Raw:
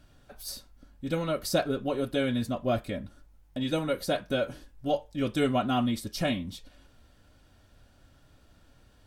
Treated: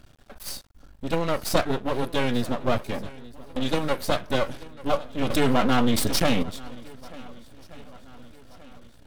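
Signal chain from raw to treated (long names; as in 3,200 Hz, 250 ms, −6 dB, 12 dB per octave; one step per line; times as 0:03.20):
half-wave rectification
feedback echo with a long and a short gap by turns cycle 1,479 ms, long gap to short 1.5 to 1, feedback 42%, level −19.5 dB
0:05.30–0:06.43: envelope flattener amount 70%
level +8 dB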